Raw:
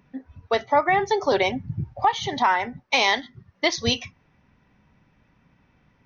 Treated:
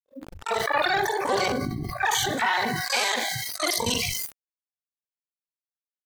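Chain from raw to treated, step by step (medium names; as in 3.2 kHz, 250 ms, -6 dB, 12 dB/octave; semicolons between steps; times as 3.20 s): time reversed locally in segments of 39 ms; Schroeder reverb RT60 1.9 s, combs from 31 ms, DRR 15.5 dB; small samples zeroed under -39 dBFS; harmony voices +7 st -18 dB, +12 st -2 dB; spectral noise reduction 24 dB; decay stretcher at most 21 dB/s; trim -6.5 dB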